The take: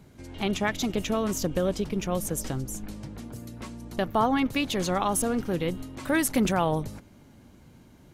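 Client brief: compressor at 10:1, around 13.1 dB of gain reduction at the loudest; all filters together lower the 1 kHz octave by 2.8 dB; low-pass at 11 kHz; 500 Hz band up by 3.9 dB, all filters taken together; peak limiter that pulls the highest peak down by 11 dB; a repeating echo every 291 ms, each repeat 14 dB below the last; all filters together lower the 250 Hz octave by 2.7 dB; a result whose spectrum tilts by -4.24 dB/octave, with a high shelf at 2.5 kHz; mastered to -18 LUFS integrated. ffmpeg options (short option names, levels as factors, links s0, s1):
-af "lowpass=11000,equalizer=f=250:t=o:g=-5.5,equalizer=f=500:t=o:g=8,equalizer=f=1000:t=o:g=-7.5,highshelf=f=2500:g=4.5,acompressor=threshold=0.0224:ratio=10,alimiter=level_in=2.51:limit=0.0631:level=0:latency=1,volume=0.398,aecho=1:1:291|582:0.2|0.0399,volume=15"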